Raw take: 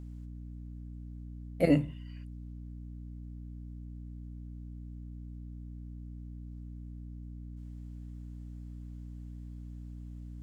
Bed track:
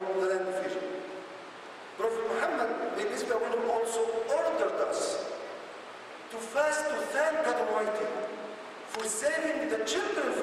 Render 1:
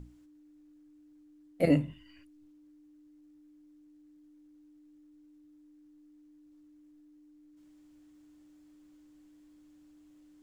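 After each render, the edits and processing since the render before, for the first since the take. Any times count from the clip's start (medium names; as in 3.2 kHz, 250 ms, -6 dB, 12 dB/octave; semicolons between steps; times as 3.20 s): hum notches 60/120/180/240 Hz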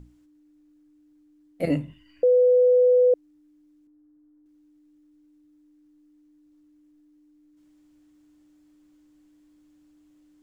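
2.23–3.14 s: bleep 498 Hz -14 dBFS; 3.87–4.46 s: low-pass 1.5 kHz 24 dB/octave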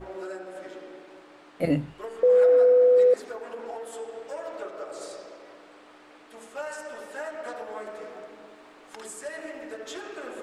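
add bed track -8 dB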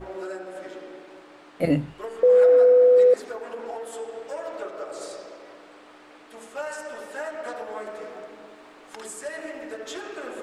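trim +2.5 dB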